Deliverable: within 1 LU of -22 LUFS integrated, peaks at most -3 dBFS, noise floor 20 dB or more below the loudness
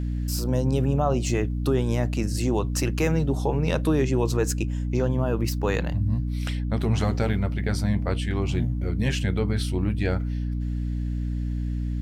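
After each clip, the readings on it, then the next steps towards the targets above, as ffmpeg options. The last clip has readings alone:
hum 60 Hz; harmonics up to 300 Hz; hum level -25 dBFS; loudness -25.5 LUFS; peak -10.0 dBFS; loudness target -22.0 LUFS
-> -af "bandreject=f=60:t=h:w=4,bandreject=f=120:t=h:w=4,bandreject=f=180:t=h:w=4,bandreject=f=240:t=h:w=4,bandreject=f=300:t=h:w=4"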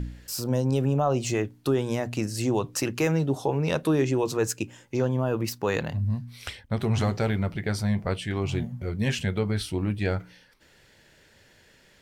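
hum none; loudness -27.0 LUFS; peak -12.0 dBFS; loudness target -22.0 LUFS
-> -af "volume=5dB"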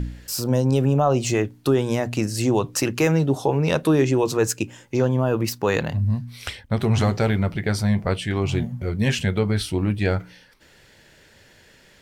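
loudness -22.0 LUFS; peak -7.0 dBFS; noise floor -53 dBFS

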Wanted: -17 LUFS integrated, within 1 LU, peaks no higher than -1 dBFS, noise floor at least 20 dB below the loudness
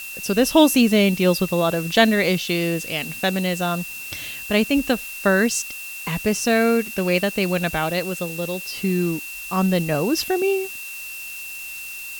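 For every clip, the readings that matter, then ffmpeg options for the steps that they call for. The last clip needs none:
steady tone 2700 Hz; tone level -33 dBFS; noise floor -34 dBFS; noise floor target -41 dBFS; loudness -21.0 LUFS; peak -2.5 dBFS; loudness target -17.0 LUFS
-> -af "bandreject=f=2.7k:w=30"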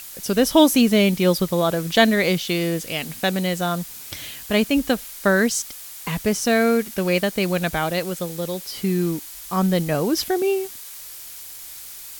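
steady tone none; noise floor -38 dBFS; noise floor target -41 dBFS
-> -af "afftdn=nr=6:nf=-38"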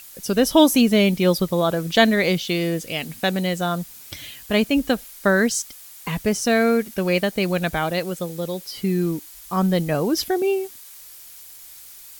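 noise floor -43 dBFS; loudness -21.0 LUFS; peak -2.5 dBFS; loudness target -17.0 LUFS
-> -af "volume=4dB,alimiter=limit=-1dB:level=0:latency=1"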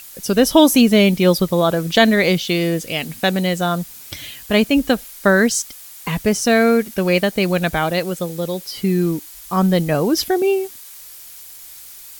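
loudness -17.0 LUFS; peak -1.0 dBFS; noise floor -39 dBFS

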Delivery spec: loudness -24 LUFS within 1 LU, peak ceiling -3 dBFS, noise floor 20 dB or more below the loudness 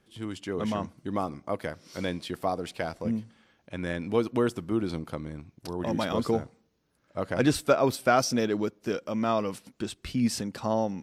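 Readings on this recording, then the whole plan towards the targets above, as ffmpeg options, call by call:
loudness -29.5 LUFS; peak -9.5 dBFS; loudness target -24.0 LUFS
-> -af "volume=5.5dB"

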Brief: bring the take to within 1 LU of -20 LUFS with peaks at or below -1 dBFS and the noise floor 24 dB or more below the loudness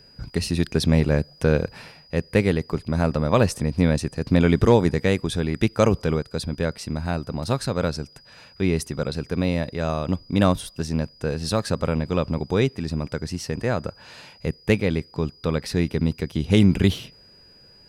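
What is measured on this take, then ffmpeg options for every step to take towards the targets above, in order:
steady tone 4900 Hz; tone level -50 dBFS; loudness -23.5 LUFS; peak -6.0 dBFS; loudness target -20.0 LUFS
-> -af "bandreject=f=4.9k:w=30"
-af "volume=3.5dB"

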